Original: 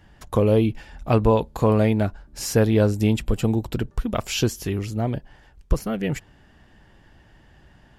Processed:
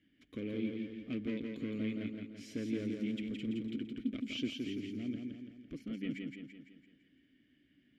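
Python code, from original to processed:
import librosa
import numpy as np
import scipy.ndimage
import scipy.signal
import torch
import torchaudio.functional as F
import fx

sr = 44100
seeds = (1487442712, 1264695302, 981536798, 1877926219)

p1 = np.clip(x, -10.0 ** (-16.0 / 20.0), 10.0 ** (-16.0 / 20.0))
p2 = fx.vowel_filter(p1, sr, vowel='i')
p3 = p2 + fx.echo_feedback(p2, sr, ms=168, feedback_pct=50, wet_db=-4.0, dry=0)
y = F.gain(torch.from_numpy(p3), -3.0).numpy()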